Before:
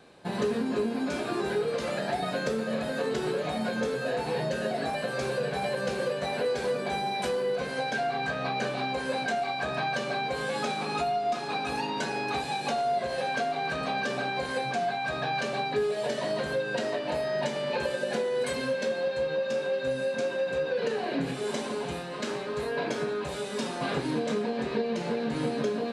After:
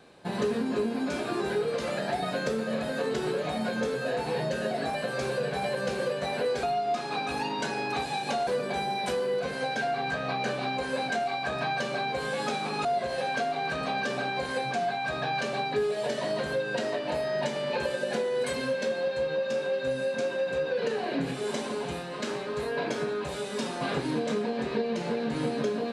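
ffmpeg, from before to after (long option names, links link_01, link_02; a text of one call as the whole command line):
ffmpeg -i in.wav -filter_complex "[0:a]asplit=4[link_01][link_02][link_03][link_04];[link_01]atrim=end=6.632[link_05];[link_02]atrim=start=11.008:end=12.852[link_06];[link_03]atrim=start=6.628:end=11.012[link_07];[link_04]atrim=start=12.848[link_08];[link_05][link_06]acrossfade=duration=0.004:curve1=hsin:curve2=hsin[link_09];[link_09][link_07]acrossfade=duration=0.004:curve1=hsin:curve2=hsin[link_10];[link_10][link_08]acrossfade=duration=0.004:curve1=hsin:curve2=hsin" out.wav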